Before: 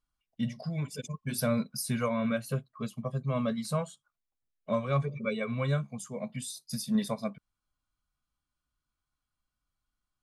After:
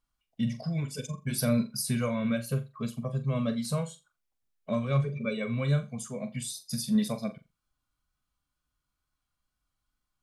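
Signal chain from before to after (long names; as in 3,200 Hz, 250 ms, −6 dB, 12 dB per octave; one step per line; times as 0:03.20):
tape wow and flutter 25 cents
dynamic equaliser 1,000 Hz, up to −7 dB, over −45 dBFS, Q 0.72
flutter between parallel walls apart 7.3 metres, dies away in 0.24 s
level +2.5 dB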